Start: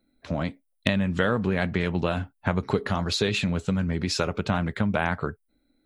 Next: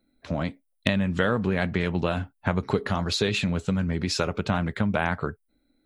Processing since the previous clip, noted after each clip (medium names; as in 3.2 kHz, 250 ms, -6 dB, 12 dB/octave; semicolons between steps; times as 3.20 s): no audible change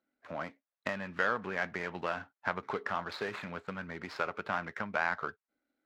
median filter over 15 samples; band-pass filter 1.6 kHz, Q 1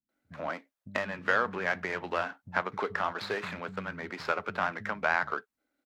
bands offset in time lows, highs 90 ms, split 190 Hz; trim +4 dB